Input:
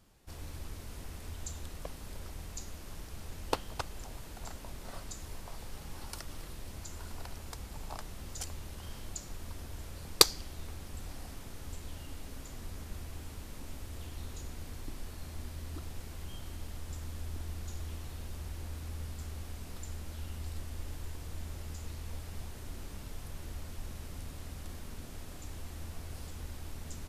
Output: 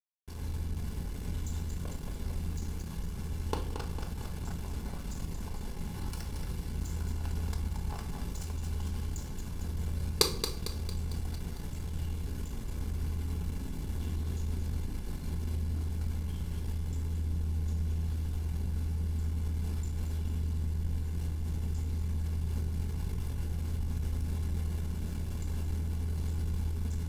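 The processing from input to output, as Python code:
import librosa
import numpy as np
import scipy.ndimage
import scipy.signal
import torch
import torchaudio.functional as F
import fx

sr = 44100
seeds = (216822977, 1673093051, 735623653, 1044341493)

p1 = fx.echo_feedback(x, sr, ms=226, feedback_pct=48, wet_db=-8)
p2 = fx.over_compress(p1, sr, threshold_db=-41.0, ratio=-0.5)
p3 = p1 + (p2 * 10.0 ** (-0.5 / 20.0))
p4 = fx.low_shelf(p3, sr, hz=500.0, db=4.0)
p5 = np.sign(p4) * np.maximum(np.abs(p4) - 10.0 ** (-37.0 / 20.0), 0.0)
p6 = fx.low_shelf(p5, sr, hz=150.0, db=9.0)
p7 = fx.notch_comb(p6, sr, f0_hz=630.0)
p8 = fx.room_shoebox(p7, sr, seeds[0], volume_m3=560.0, walls='furnished', distance_m=1.4)
y = p8 * 10.0 ** (-5.0 / 20.0)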